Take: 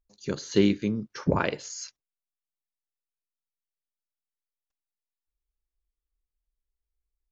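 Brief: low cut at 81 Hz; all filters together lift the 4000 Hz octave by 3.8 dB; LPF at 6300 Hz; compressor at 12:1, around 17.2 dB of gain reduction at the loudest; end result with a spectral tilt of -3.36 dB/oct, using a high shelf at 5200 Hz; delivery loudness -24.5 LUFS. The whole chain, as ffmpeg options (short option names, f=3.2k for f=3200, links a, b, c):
-af "highpass=81,lowpass=6.3k,equalizer=f=4k:t=o:g=3.5,highshelf=f=5.2k:g=5,acompressor=threshold=-33dB:ratio=12,volume=14dB"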